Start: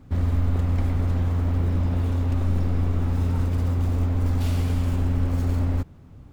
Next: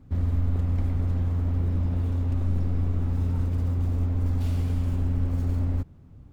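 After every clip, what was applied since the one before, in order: bass shelf 390 Hz +6.5 dB; trim -8.5 dB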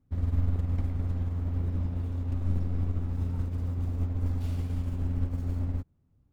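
upward expansion 2.5:1, over -33 dBFS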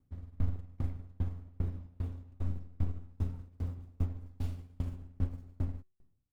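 feedback comb 370 Hz, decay 0.78 s, mix 50%; sawtooth tremolo in dB decaying 2.5 Hz, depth 32 dB; trim +6 dB

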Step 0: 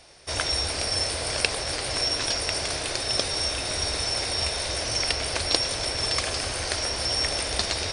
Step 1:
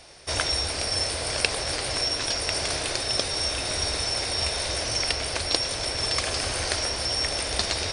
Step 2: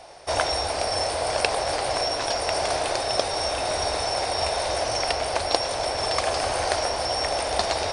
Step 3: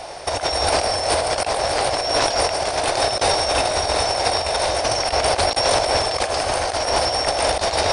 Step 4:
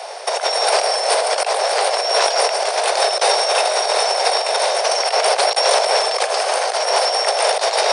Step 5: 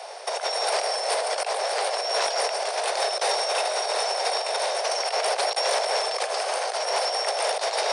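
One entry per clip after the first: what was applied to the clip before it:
gain riding within 4 dB 0.5 s
peaking EQ 750 Hz +14.5 dB 1.4 oct; trim -3 dB
compressor with a negative ratio -28 dBFS, ratio -0.5; trim +8.5 dB
steep high-pass 400 Hz 72 dB/octave; trim +3 dB
transformer saturation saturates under 1.3 kHz; trim -7.5 dB

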